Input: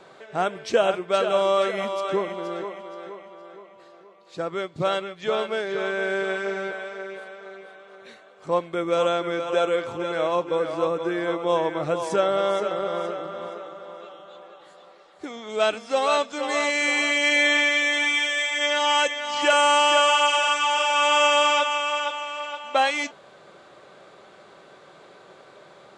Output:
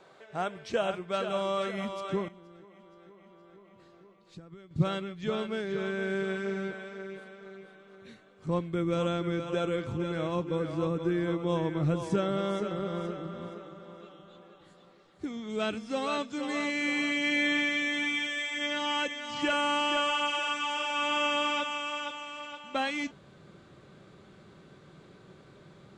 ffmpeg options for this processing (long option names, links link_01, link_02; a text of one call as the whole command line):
ffmpeg -i in.wav -filter_complex "[0:a]asettb=1/sr,asplit=3[link_01][link_02][link_03];[link_01]atrim=end=2.284[link_04];[link_02]atrim=start=2.28:end=4.71,asetpts=PTS-STARTPTS,afade=type=in:duration=0.004:curve=qsin,afade=type=out:start_time=2.426:duration=0.004:curve=qsin,acompressor=threshold=-44dB:ratio=5:attack=3.2:release=140:knee=1:detection=peak[link_05];[link_03]atrim=start=4.706[link_06];[link_04][link_05]acrossfade=duration=0.004:curve1=hsin:curve2=qsin[link_07];[link_07][link_06]acrossfade=duration=0.004:curve1=qsin:curve2=hsin,acrossover=split=4300[link_08][link_09];[link_09]acompressor=threshold=-39dB:ratio=4:attack=1:release=60[link_10];[link_08][link_10]amix=inputs=2:normalize=0,asubboost=boost=10:cutoff=200,volume=-7.5dB" out.wav